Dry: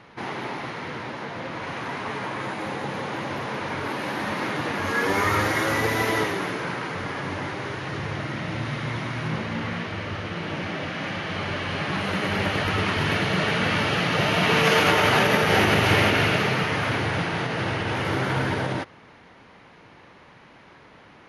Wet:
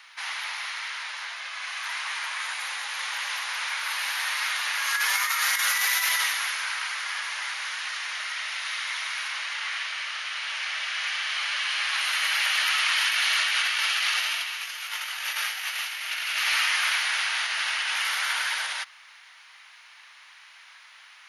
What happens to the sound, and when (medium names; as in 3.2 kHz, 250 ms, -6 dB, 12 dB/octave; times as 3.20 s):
1.34–1.84 s: comb of notches 470 Hz
2.69–3.09 s: echo throw 300 ms, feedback 85%, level -6 dB
whole clip: Bessel high-pass 1.5 kHz, order 4; tilt EQ +3.5 dB/octave; compressor with a negative ratio -25 dBFS, ratio -0.5